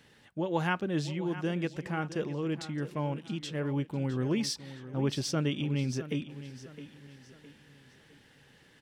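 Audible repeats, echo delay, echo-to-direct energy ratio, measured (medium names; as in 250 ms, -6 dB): 3, 662 ms, -13.5 dB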